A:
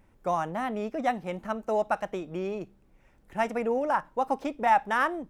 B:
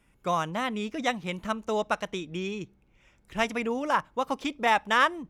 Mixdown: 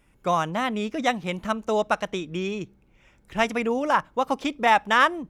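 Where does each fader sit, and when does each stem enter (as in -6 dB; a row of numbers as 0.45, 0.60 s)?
-7.5, +2.0 dB; 0.00, 0.00 s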